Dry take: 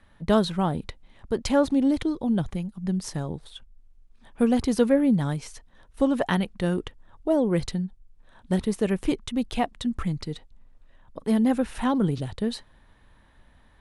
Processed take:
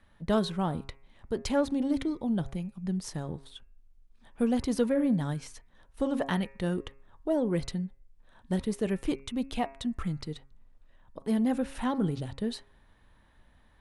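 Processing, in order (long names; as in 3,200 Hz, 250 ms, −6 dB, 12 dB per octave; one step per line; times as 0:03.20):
hum removal 136.1 Hz, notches 20
in parallel at −6 dB: soft clipping −18 dBFS, distortion −14 dB
on the sum: level −8 dB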